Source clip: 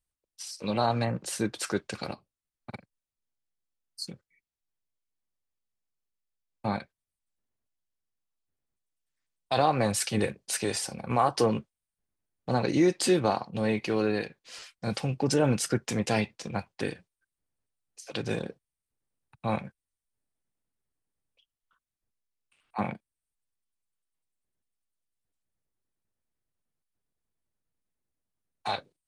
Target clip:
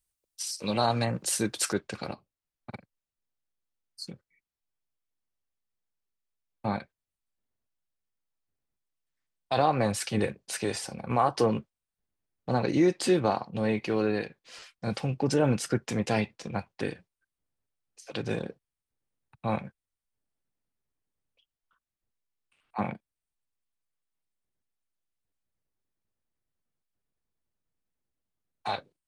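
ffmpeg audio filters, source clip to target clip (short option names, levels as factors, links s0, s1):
-af "asetnsamples=n=441:p=0,asendcmd='1.73 highshelf g -6',highshelf=f=4200:g=8.5"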